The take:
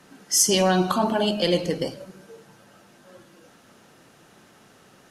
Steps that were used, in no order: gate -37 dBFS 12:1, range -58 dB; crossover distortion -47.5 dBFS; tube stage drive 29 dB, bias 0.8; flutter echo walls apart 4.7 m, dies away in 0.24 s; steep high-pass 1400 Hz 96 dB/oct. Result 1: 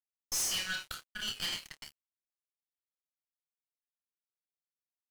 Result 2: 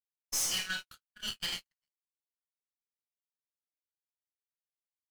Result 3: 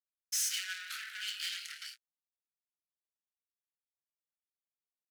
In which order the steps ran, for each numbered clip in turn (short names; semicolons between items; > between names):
steep high-pass > gate > flutter echo > tube stage > crossover distortion; steep high-pass > tube stage > flutter echo > crossover distortion > gate; flutter echo > tube stage > gate > crossover distortion > steep high-pass